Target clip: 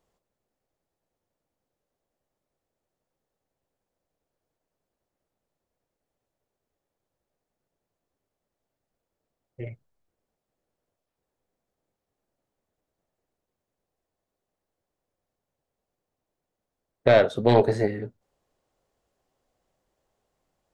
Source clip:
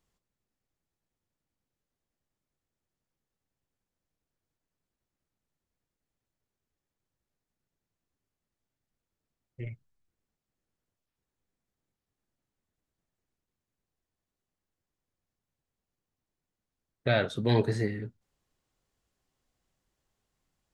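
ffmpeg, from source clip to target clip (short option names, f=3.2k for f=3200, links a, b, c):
-af "aeval=exprs='0.251*(cos(1*acos(clip(val(0)/0.251,-1,1)))-cos(1*PI/2))+0.0891*(cos(2*acos(clip(val(0)/0.251,-1,1)))-cos(2*PI/2))':c=same,equalizer=f=590:t=o:w=1.6:g=12"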